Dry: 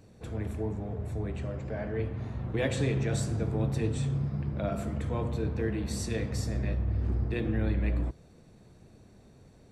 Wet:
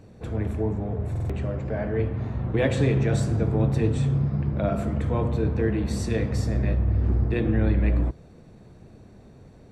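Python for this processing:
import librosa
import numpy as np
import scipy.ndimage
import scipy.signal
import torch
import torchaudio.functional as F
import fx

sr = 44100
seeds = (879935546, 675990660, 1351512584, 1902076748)

y = fx.high_shelf(x, sr, hz=3400.0, db=-9.0)
y = fx.buffer_glitch(y, sr, at_s=(1.11,), block=2048, repeats=3)
y = y * 10.0 ** (7.0 / 20.0)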